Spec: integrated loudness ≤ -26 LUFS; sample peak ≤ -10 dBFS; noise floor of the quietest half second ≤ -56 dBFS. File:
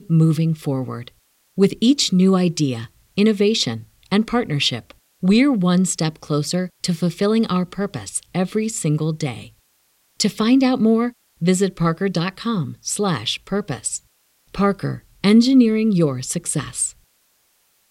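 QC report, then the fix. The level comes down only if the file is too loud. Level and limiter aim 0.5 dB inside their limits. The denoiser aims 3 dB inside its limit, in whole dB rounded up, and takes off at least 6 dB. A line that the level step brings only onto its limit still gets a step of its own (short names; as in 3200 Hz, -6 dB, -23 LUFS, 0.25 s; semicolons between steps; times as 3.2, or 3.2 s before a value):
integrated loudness -19.5 LUFS: fail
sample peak -4.5 dBFS: fail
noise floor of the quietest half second -62 dBFS: OK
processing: gain -7 dB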